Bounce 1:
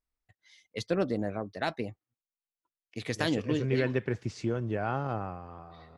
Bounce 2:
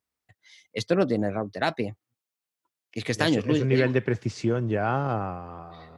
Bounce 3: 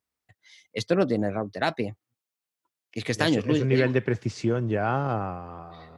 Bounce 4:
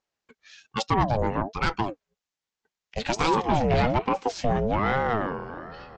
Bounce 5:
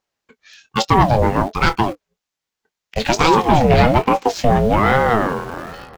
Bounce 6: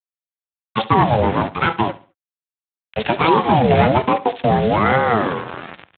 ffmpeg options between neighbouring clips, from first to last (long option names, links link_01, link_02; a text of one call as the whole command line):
ffmpeg -i in.wav -af "highpass=frequency=81:width=0.5412,highpass=frequency=81:width=1.3066,volume=6dB" out.wav
ffmpeg -i in.wav -af anull out.wav
ffmpeg -i in.wav -af "aresample=16000,asoftclip=type=tanh:threshold=-18.5dB,aresample=44100,aeval=exprs='val(0)*sin(2*PI*480*n/s+480*0.4/1.2*sin(2*PI*1.2*n/s))':channel_layout=same,volume=6dB" out.wav
ffmpeg -i in.wav -filter_complex "[0:a]asplit=2[link_01][link_02];[link_02]aeval=exprs='val(0)*gte(abs(val(0)),0.0178)':channel_layout=same,volume=-3.5dB[link_03];[link_01][link_03]amix=inputs=2:normalize=0,asplit=2[link_04][link_05];[link_05]adelay=23,volume=-11.5dB[link_06];[link_04][link_06]amix=inputs=2:normalize=0,volume=5dB" out.wav
ffmpeg -i in.wav -af "aresample=11025,acrusher=bits=3:mix=0:aa=0.5,aresample=44100,aecho=1:1:69|138|207:0.141|0.0438|0.0136,volume=-1dB" -ar 8000 -c:a libspeex -b:a 18k out.spx